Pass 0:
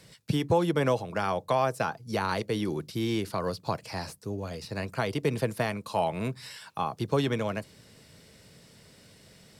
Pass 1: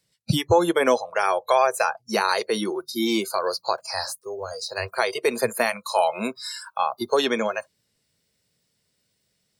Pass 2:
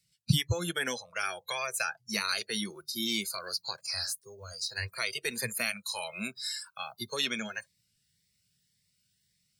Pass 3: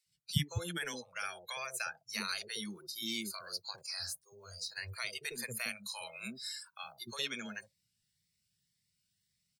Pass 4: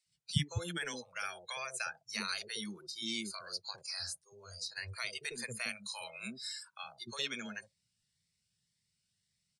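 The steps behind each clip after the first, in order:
high shelf 2800 Hz +9 dB; spectral noise reduction 28 dB; gain +6.5 dB
band shelf 540 Hz -15 dB 2.5 oct; cascading phaser rising 1.8 Hz; gain -1.5 dB
bands offset in time highs, lows 60 ms, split 580 Hz; gain -6.5 dB
downsampling 22050 Hz

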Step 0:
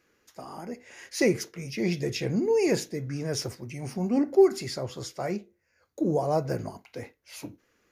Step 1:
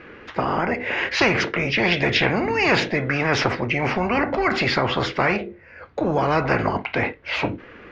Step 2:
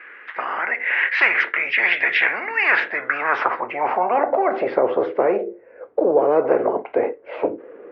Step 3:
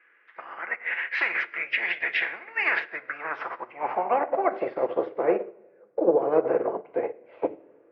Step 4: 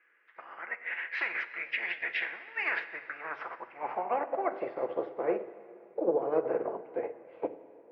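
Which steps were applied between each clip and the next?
LPF 2900 Hz 24 dB/oct; spectral compressor 4:1; gain +5 dB
three-band isolator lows -19 dB, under 310 Hz, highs -13 dB, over 3100 Hz; band-pass sweep 1900 Hz -> 470 Hz, 2.54–4.91; low shelf 280 Hz +10 dB; gain +8 dB
limiter -10.5 dBFS, peak gain reduction 7.5 dB; shoebox room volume 1500 m³, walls mixed, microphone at 0.75 m; upward expander 2.5:1, over -28 dBFS
plate-style reverb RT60 2.7 s, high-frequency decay 0.95×, DRR 13.5 dB; gain -7 dB

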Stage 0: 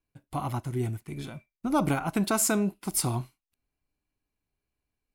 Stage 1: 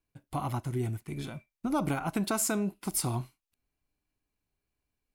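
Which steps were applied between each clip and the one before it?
compressor 2:1, threshold -29 dBFS, peak gain reduction 5 dB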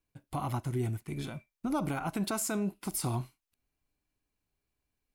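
limiter -24 dBFS, peak gain reduction 6 dB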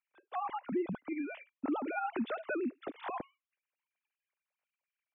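sine-wave speech; compressor 2:1, threshold -34 dBFS, peak gain reduction 6 dB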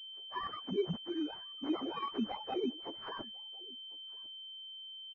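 inharmonic rescaling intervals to 130%; outdoor echo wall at 180 m, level -24 dB; pulse-width modulation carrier 3100 Hz; gain +3 dB

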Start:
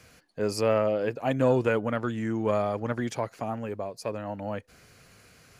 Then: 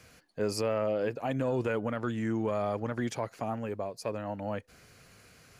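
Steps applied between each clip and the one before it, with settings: limiter -19.5 dBFS, peak gain reduction 8 dB; gain -1.5 dB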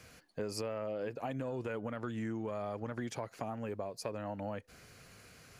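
compressor, threshold -35 dBFS, peak gain reduction 9.5 dB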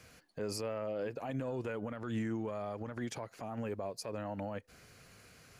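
limiter -34 dBFS, peak gain reduction 10 dB; upward expander 1.5:1, over -54 dBFS; gain +6 dB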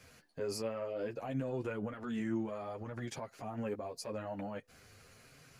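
chorus voices 4, 0.58 Hz, delay 11 ms, depth 3.6 ms; gain +2 dB

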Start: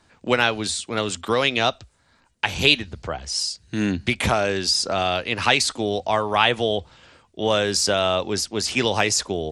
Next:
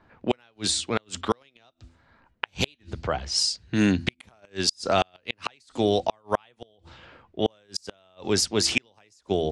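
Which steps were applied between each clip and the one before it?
low-pass opened by the level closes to 1800 Hz, open at -19 dBFS; de-hum 83.72 Hz, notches 4; flipped gate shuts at -10 dBFS, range -40 dB; gain +2 dB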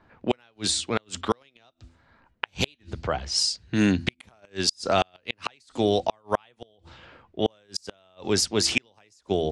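nothing audible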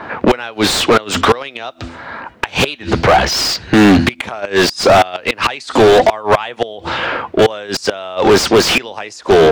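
overdrive pedal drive 38 dB, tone 1500 Hz, clips at -4.5 dBFS; gain +5 dB

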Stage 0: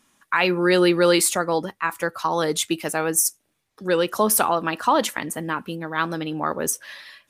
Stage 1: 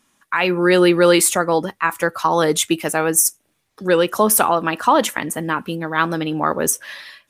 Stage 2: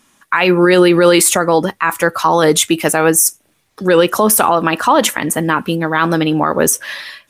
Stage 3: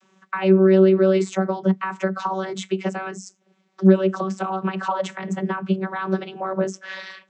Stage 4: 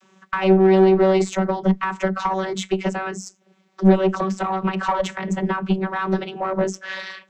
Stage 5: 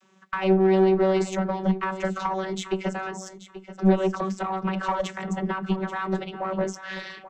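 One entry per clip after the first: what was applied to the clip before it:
AGC gain up to 7.5 dB; dynamic EQ 4500 Hz, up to -5 dB, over -39 dBFS, Q 2.6
limiter -9.5 dBFS, peak gain reduction 7.5 dB; gain +8 dB
compressor 4:1, threshold -20 dBFS, peak gain reduction 12 dB; vocoder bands 32, saw 190 Hz; gain +3 dB
one diode to ground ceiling -17.5 dBFS; gain +4 dB
feedback echo 0.833 s, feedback 20%, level -14 dB; gain -5 dB

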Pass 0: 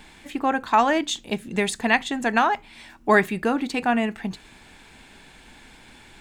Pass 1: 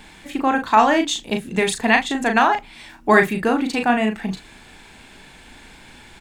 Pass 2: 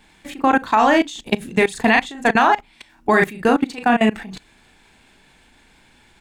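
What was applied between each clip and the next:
doubler 37 ms -5.5 dB; gain +3 dB
level quantiser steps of 20 dB; gain +6.5 dB

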